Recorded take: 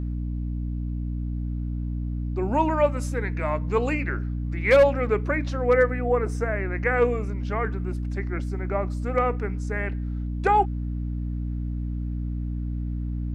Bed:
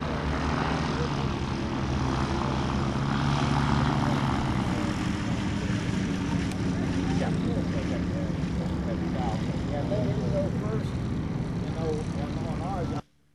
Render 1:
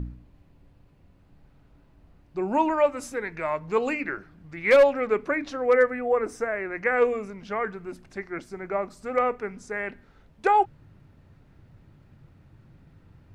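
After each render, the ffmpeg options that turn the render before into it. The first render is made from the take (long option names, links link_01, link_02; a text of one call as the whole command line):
ffmpeg -i in.wav -af "bandreject=frequency=60:width_type=h:width=4,bandreject=frequency=120:width_type=h:width=4,bandreject=frequency=180:width_type=h:width=4,bandreject=frequency=240:width_type=h:width=4,bandreject=frequency=300:width_type=h:width=4" out.wav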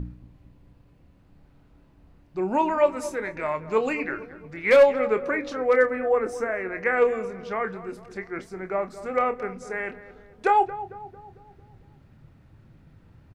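ffmpeg -i in.wav -filter_complex "[0:a]asplit=2[link_01][link_02];[link_02]adelay=27,volume=-10dB[link_03];[link_01][link_03]amix=inputs=2:normalize=0,asplit=2[link_04][link_05];[link_05]adelay=225,lowpass=frequency=1300:poles=1,volume=-13.5dB,asplit=2[link_06][link_07];[link_07]adelay=225,lowpass=frequency=1300:poles=1,volume=0.55,asplit=2[link_08][link_09];[link_09]adelay=225,lowpass=frequency=1300:poles=1,volume=0.55,asplit=2[link_10][link_11];[link_11]adelay=225,lowpass=frequency=1300:poles=1,volume=0.55,asplit=2[link_12][link_13];[link_13]adelay=225,lowpass=frequency=1300:poles=1,volume=0.55,asplit=2[link_14][link_15];[link_15]adelay=225,lowpass=frequency=1300:poles=1,volume=0.55[link_16];[link_04][link_06][link_08][link_10][link_12][link_14][link_16]amix=inputs=7:normalize=0" out.wav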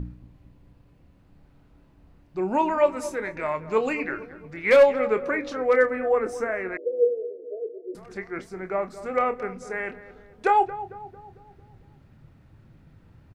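ffmpeg -i in.wav -filter_complex "[0:a]asettb=1/sr,asplit=3[link_01][link_02][link_03];[link_01]atrim=end=6.774[link_04];[link_02]atrim=start=6.77:end=7.95,asetpts=PTS-STARTPTS,afade=type=in:duration=0.004:curve=qsin,afade=type=out:start_time=1.176:duration=0.004:curve=qsin,asuperpass=centerf=410:order=20:qfactor=1.2[link_05];[link_03]atrim=start=7.946[link_06];[link_04][link_05]acrossfade=duration=0.004:curve1=hsin:curve2=qsin[link_07];[link_07][link_06]acrossfade=duration=0.004:curve1=qsin:curve2=hsin" out.wav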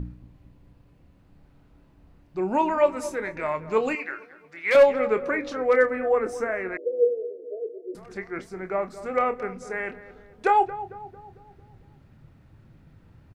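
ffmpeg -i in.wav -filter_complex "[0:a]asettb=1/sr,asplit=3[link_01][link_02][link_03];[link_01]atrim=end=3.954[link_04];[link_02]atrim=start=3.95:end=4.75,asetpts=PTS-STARTPTS,afade=type=in:duration=0.004:curve=qsin,afade=type=out:start_time=0.796:duration=0.004:curve=qsin,highpass=frequency=1100:poles=1[link_05];[link_03]atrim=start=4.746[link_06];[link_04][link_05]acrossfade=duration=0.004:curve1=hsin:curve2=qsin[link_07];[link_07][link_06]acrossfade=duration=0.004:curve1=qsin:curve2=hsin" out.wav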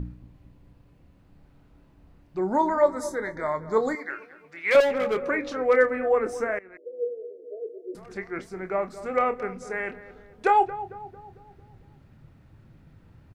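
ffmpeg -i in.wav -filter_complex "[0:a]asettb=1/sr,asplit=3[link_01][link_02][link_03];[link_01]atrim=end=2.384[link_04];[link_02]atrim=start=2.38:end=4.1,asetpts=PTS-STARTPTS,afade=type=in:duration=0.004:curve=qsin,afade=type=out:start_time=1.716:duration=0.004:curve=qsin,asuperstop=centerf=2700:order=8:qfactor=2[link_05];[link_03]atrim=start=4.096[link_06];[link_04][link_05]acrossfade=duration=0.004:curve1=hsin:curve2=qsin[link_07];[link_07][link_06]acrossfade=duration=0.004:curve1=qsin:curve2=hsin,asettb=1/sr,asplit=3[link_08][link_09][link_10];[link_08]atrim=end=4.804[link_11];[link_09]atrim=start=4.8:end=5.2,asetpts=PTS-STARTPTS,afade=type=in:duration=0.004:curve=qsin,afade=type=out:start_time=0.396:duration=0.004:curve=qsin,asoftclip=type=hard:threshold=-21dB[link_12];[link_10]atrim=start=5.196[link_13];[link_11][link_12]acrossfade=duration=0.004:curve1=hsin:curve2=qsin[link_14];[link_14][link_13]acrossfade=duration=0.004:curve1=qsin:curve2=hsin,asplit=2[link_15][link_16];[link_15]atrim=end=6.59,asetpts=PTS-STARTPTS,afade=type=out:start_time=6.586:duration=0.004:curve=hsin:silence=0.0891251[link_17];[link_16]atrim=start=6.59,asetpts=PTS-STARTPTS,afade=type=in:duration=1.48:silence=0.0891251[link_18];[link_17][link_18]concat=n=2:v=0:a=1" out.wav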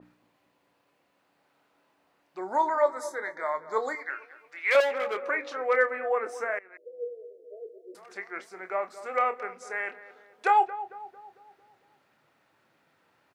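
ffmpeg -i in.wav -af "highpass=640,adynamicequalizer=threshold=0.00562:dfrequency=3500:dqfactor=0.7:tfrequency=3500:tqfactor=0.7:attack=5:release=100:ratio=0.375:range=3:mode=cutabove:tftype=highshelf" out.wav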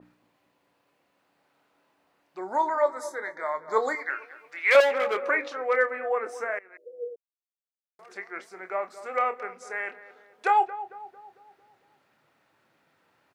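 ffmpeg -i in.wav -filter_complex "[0:a]asplit=5[link_01][link_02][link_03][link_04][link_05];[link_01]atrim=end=3.682[link_06];[link_02]atrim=start=3.678:end=5.482,asetpts=PTS-STARTPTS,volume=4dB[link_07];[link_03]atrim=start=5.478:end=7.16,asetpts=PTS-STARTPTS,afade=type=out:start_time=1.678:duration=0.004:curve=hsin[link_08];[link_04]atrim=start=7.16:end=7.99,asetpts=PTS-STARTPTS,volume=0[link_09];[link_05]atrim=start=7.99,asetpts=PTS-STARTPTS,afade=type=in:duration=0.004:curve=hsin[link_10];[link_06][link_07]acrossfade=duration=0.004:curve1=hsin:curve2=hsin[link_11];[link_08][link_09][link_10]concat=n=3:v=0:a=1[link_12];[link_11][link_12]acrossfade=duration=0.004:curve1=hsin:curve2=hsin" out.wav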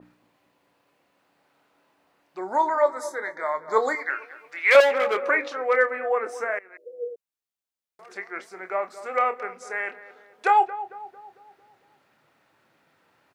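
ffmpeg -i in.wav -af "volume=3dB" out.wav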